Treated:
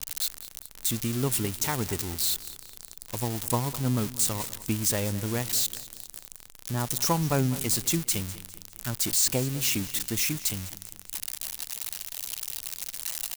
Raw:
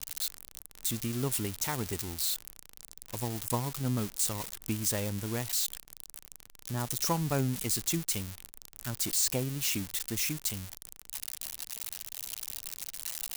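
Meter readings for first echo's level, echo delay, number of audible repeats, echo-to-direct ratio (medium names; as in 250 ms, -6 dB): -17.0 dB, 204 ms, 3, -16.0 dB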